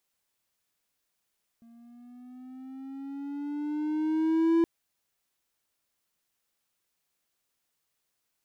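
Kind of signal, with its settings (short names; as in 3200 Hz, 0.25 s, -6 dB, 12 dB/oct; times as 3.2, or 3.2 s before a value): gliding synth tone triangle, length 3.02 s, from 230 Hz, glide +6.5 st, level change +32.5 dB, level -17 dB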